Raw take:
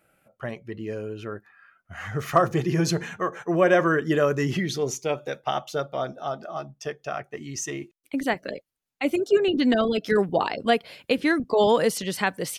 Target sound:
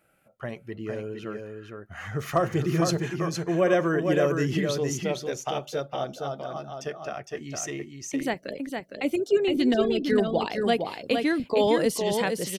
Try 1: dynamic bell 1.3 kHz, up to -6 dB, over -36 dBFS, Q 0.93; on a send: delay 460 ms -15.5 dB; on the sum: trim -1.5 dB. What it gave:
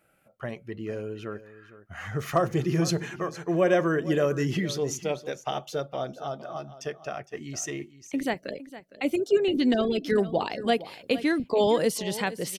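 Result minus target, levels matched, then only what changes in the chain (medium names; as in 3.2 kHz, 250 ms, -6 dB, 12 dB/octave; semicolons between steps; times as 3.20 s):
echo-to-direct -10.5 dB
change: delay 460 ms -5 dB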